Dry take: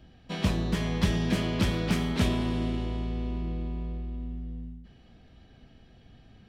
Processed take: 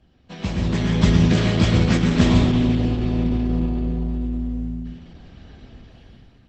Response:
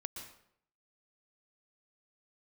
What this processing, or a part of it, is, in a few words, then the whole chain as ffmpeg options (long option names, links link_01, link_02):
speakerphone in a meeting room: -filter_complex "[1:a]atrim=start_sample=2205[link_01];[0:a][link_01]afir=irnorm=-1:irlink=0,dynaudnorm=framelen=190:gausssize=7:maxgain=13dB" -ar 48000 -c:a libopus -b:a 12k